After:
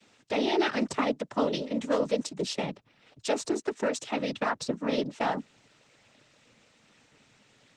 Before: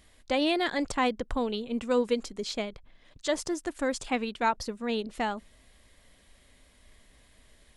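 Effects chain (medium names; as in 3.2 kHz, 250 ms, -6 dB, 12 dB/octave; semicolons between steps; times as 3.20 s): 1.11–2.33 s: tone controls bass -5 dB, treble +4 dB; peak limiter -21.5 dBFS, peak gain reduction 7 dB; noise-vocoded speech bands 12; trim +4 dB; Opus 20 kbps 48 kHz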